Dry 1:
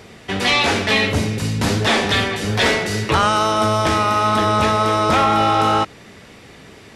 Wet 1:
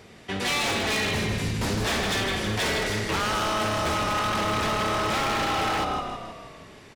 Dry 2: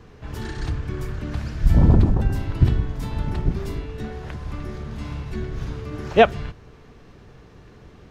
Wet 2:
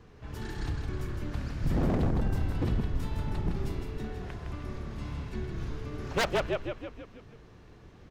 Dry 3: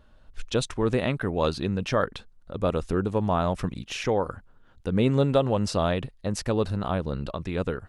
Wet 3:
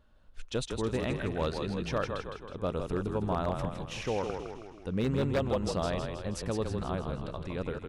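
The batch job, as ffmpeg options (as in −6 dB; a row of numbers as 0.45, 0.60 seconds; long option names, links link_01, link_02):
-filter_complex "[0:a]asplit=8[link_01][link_02][link_03][link_04][link_05][link_06][link_07][link_08];[link_02]adelay=160,afreqshift=-33,volume=-5.5dB[link_09];[link_03]adelay=320,afreqshift=-66,volume=-10.7dB[link_10];[link_04]adelay=480,afreqshift=-99,volume=-15.9dB[link_11];[link_05]adelay=640,afreqshift=-132,volume=-21.1dB[link_12];[link_06]adelay=800,afreqshift=-165,volume=-26.3dB[link_13];[link_07]adelay=960,afreqshift=-198,volume=-31.5dB[link_14];[link_08]adelay=1120,afreqshift=-231,volume=-36.7dB[link_15];[link_01][link_09][link_10][link_11][link_12][link_13][link_14][link_15]amix=inputs=8:normalize=0,aeval=exprs='0.224*(abs(mod(val(0)/0.224+3,4)-2)-1)':channel_layout=same,volume=-7.5dB"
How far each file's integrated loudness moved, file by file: −8.5, −10.0, −6.5 LU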